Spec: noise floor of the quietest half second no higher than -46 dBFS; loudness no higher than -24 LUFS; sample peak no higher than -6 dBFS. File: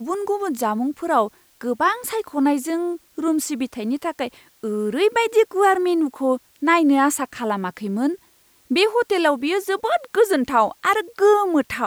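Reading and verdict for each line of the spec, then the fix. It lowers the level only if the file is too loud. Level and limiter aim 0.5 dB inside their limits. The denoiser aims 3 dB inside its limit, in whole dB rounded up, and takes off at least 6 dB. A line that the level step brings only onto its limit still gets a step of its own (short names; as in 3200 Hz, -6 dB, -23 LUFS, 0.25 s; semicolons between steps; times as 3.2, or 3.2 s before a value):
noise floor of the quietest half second -57 dBFS: OK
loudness -20.5 LUFS: fail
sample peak -5.5 dBFS: fail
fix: gain -4 dB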